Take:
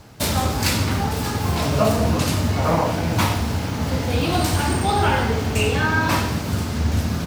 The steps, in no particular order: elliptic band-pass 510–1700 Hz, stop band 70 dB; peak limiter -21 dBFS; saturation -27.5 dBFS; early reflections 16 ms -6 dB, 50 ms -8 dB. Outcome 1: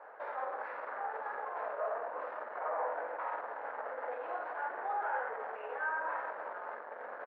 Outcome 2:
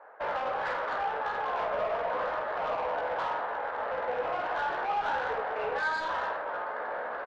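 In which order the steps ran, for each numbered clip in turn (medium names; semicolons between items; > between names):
early reflections > peak limiter > saturation > elliptic band-pass; elliptic band-pass > peak limiter > saturation > early reflections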